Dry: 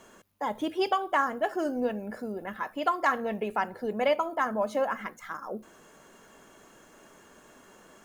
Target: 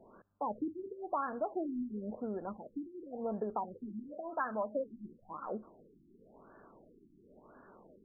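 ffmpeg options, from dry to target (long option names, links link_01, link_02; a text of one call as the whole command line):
ffmpeg -i in.wav -filter_complex "[0:a]asettb=1/sr,asplit=3[link_01][link_02][link_03];[link_01]atrim=end=3.764[link_04];[link_02]atrim=start=3.76:end=4.76,asetpts=PTS-STARTPTS,afade=type=in:duration=0.004:curve=qsin,afade=type=out:start_time=0.996:duration=0.004:curve=qsin,tiltshelf=frequency=970:gain=-3.5[link_05];[link_03]atrim=start=4.756[link_06];[link_04][link_05]acrossfade=duration=0.004:curve1=hsin:curve2=qsin[link_07];[link_07][link_06]acrossfade=duration=0.004:curve1=qsin:curve2=hsin,acompressor=threshold=-30dB:ratio=2.5,afftfilt=real='re*lt(b*sr/1024,370*pow(1800/370,0.5+0.5*sin(2*PI*0.95*pts/sr)))':imag='im*lt(b*sr/1024,370*pow(1800/370,0.5+0.5*sin(2*PI*0.95*pts/sr)))':win_size=1024:overlap=0.75,volume=-2.5dB" out.wav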